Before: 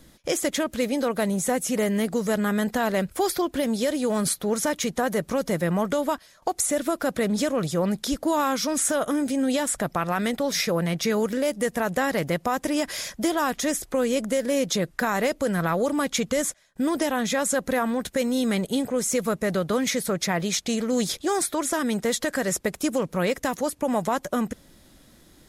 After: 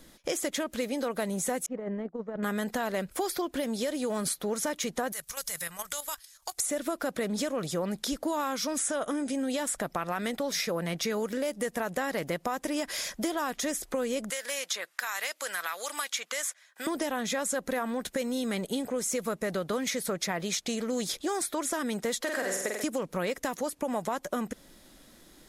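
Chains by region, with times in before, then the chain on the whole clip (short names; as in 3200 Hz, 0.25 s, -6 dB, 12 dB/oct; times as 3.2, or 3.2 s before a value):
1.66–2.43 expander -19 dBFS + LPF 1200 Hz + negative-ratio compressor -30 dBFS, ratio -0.5
5.12–6.58 EQ curve 110 Hz 0 dB, 240 Hz -27 dB, 1300 Hz -4 dB, 3100 Hz +2 dB, 9300 Hz +13 dB + level quantiser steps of 11 dB
8.79–9.33 steep low-pass 11000 Hz 96 dB/oct + notch 4200 Hz, Q 21
14.3–16.87 HPF 1300 Hz + three-band squash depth 70%
22.21–22.84 HPF 140 Hz + tone controls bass -12 dB, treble -2 dB + flutter echo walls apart 8.1 m, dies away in 0.76 s
whole clip: bell 87 Hz -10.5 dB 1.7 oct; compressor 2.5:1, threshold -30 dBFS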